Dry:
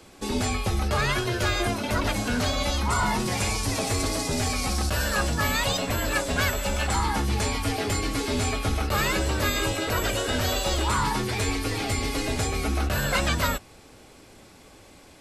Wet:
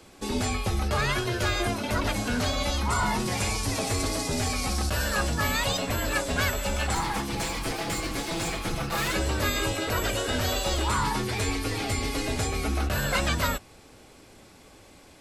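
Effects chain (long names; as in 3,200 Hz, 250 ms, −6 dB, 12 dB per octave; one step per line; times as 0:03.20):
0:06.95–0:09.14: lower of the sound and its delayed copy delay 6 ms
level −1.5 dB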